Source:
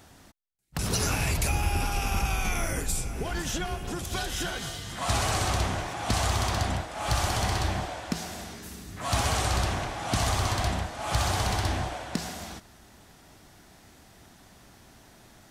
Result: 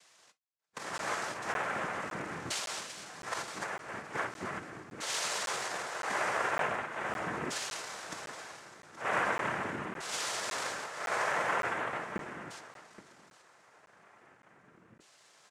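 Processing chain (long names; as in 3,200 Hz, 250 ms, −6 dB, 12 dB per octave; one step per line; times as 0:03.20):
auto-filter band-pass saw down 0.4 Hz 350–2,800 Hz
cochlear-implant simulation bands 3
single-tap delay 824 ms −16 dB
reverb whose tail is shaped and stops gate 80 ms falling, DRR 11 dB
regular buffer underruns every 0.56 s, samples 512, zero, from 0:00.42
level +3 dB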